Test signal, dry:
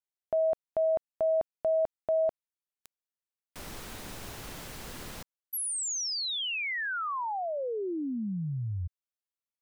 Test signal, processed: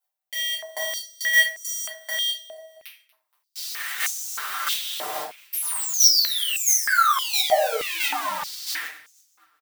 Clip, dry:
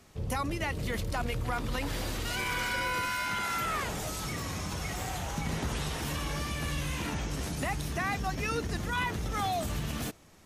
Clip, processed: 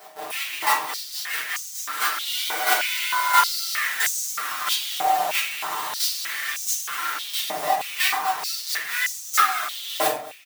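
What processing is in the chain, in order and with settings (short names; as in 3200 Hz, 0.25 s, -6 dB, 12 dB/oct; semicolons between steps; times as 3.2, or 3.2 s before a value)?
half-waves squared off; high shelf 11000 Hz +11.5 dB; comb 6.6 ms, depth 90%; AGC gain up to 5.5 dB; in parallel at +0.5 dB: limiter -14 dBFS; on the sum: compressor, threshold -15 dBFS; chopper 1.5 Hz, depth 65%, duty 10%; on a send: feedback echo 0.236 s, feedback 46%, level -21 dB; on the sum: shoebox room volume 48 m³, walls mixed, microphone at 1.2 m; stepped high-pass 3.2 Hz 700–6400 Hz; gain -5 dB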